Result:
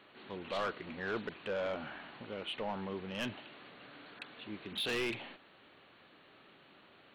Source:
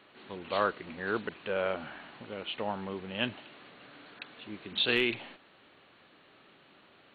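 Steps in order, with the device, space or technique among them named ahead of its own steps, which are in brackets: saturation between pre-emphasis and de-emphasis (treble shelf 3.7 kHz +7 dB; saturation -28.5 dBFS, distortion -7 dB; treble shelf 3.7 kHz -7 dB); trim -1 dB

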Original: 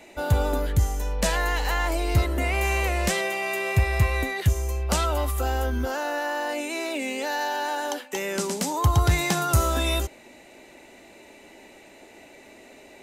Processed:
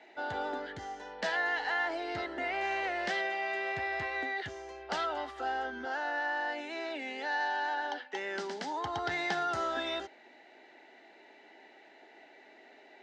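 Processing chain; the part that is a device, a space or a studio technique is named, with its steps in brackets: 7.74–8.14 s: low-pass 6.3 kHz 24 dB/octave; phone earpiece (cabinet simulation 460–4100 Hz, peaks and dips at 550 Hz -9 dB, 780 Hz +3 dB, 1.1 kHz -10 dB, 1.7 kHz +4 dB, 2.5 kHz -10 dB, 3.8 kHz -4 dB); trim -3 dB

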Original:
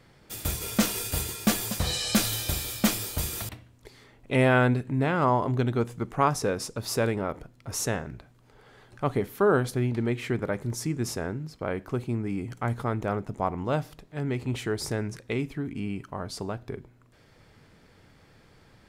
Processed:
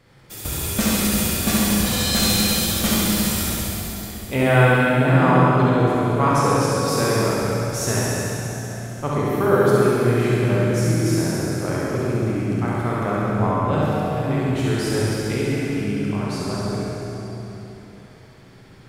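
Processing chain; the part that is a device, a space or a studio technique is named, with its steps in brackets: tunnel (flutter echo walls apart 11.7 m, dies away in 1.1 s; reverberation RT60 3.6 s, pre-delay 22 ms, DRR -4.5 dB)

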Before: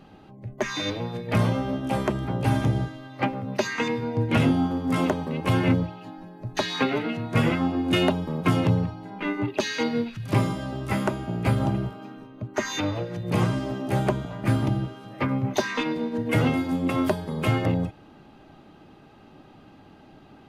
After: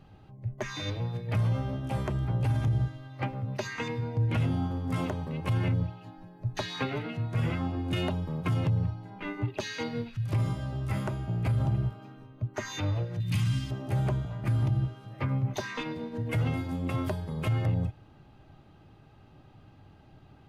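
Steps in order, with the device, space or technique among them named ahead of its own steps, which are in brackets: car stereo with a boomy subwoofer (resonant low shelf 160 Hz +9 dB, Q 1.5; peak limiter -12.5 dBFS, peak gain reduction 9.5 dB); 13.20–13.71 s: FFT filter 270 Hz 0 dB, 440 Hz -20 dB, 2.8 kHz +9 dB; trim -7.5 dB

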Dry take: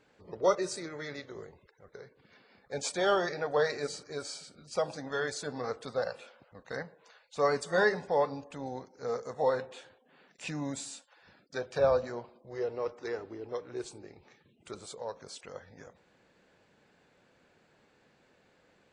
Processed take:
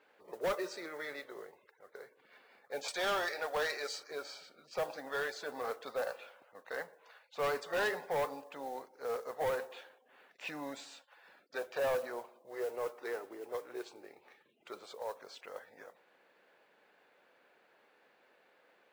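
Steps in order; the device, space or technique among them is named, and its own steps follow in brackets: 2.88–4.11 s: RIAA curve recording; carbon microphone (band-pass 470–3300 Hz; saturation -30 dBFS, distortion -8 dB; modulation noise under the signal 21 dB); trim +1 dB

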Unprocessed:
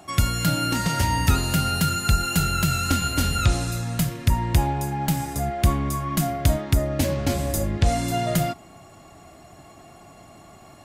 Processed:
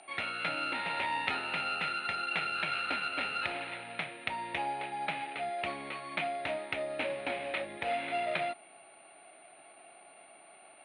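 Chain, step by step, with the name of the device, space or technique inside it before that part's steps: toy sound module (decimation joined by straight lines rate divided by 8×; class-D stage that switches slowly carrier 9.1 kHz; cabinet simulation 660–4500 Hz, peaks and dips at 1.1 kHz -9 dB, 1.5 kHz -4 dB, 2.4 kHz +8 dB, 4.1 kHz +9 dB); trim -3 dB

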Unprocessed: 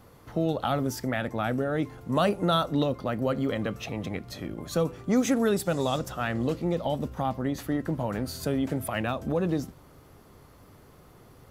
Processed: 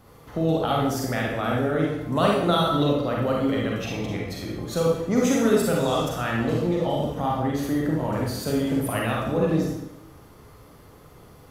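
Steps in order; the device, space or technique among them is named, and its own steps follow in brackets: bathroom (reverberation RT60 0.85 s, pre-delay 34 ms, DRR -3 dB)

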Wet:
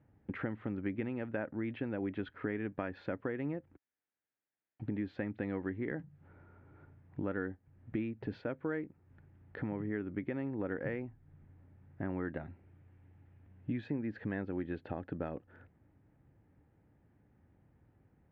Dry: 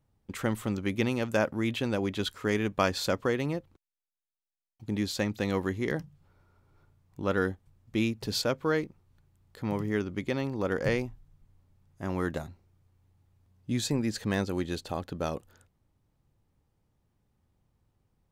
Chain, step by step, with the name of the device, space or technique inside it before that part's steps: bass amplifier (compression 4:1, threshold -45 dBFS, peak gain reduction 20.5 dB; cabinet simulation 64–2200 Hz, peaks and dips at 290 Hz +6 dB, 1.1 kHz -7 dB, 1.7 kHz +4 dB); 12.36–13.88 s: peaking EQ 2.7 kHz +5 dB 0.9 oct; trim +6.5 dB

